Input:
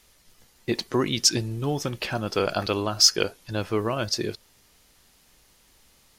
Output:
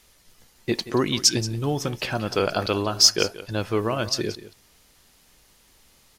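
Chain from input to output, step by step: delay 179 ms -15.5 dB; trim +1.5 dB

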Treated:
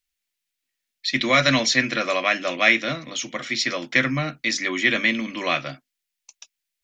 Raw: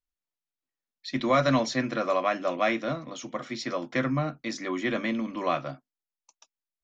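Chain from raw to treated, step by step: resonant high shelf 1.5 kHz +10 dB, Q 1.5; trim +2.5 dB

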